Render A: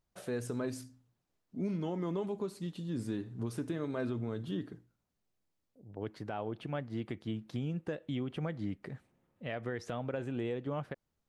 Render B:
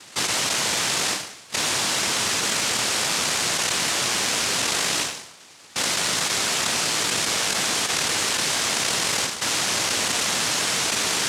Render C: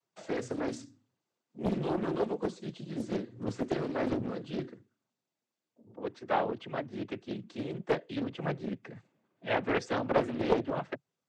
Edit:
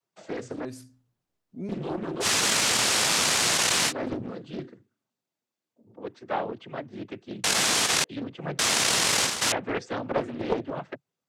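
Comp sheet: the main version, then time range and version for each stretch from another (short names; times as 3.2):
C
0.65–1.69 from A
2.23–3.9 from B, crossfade 0.06 s
7.44–8.04 from B
8.59–9.52 from B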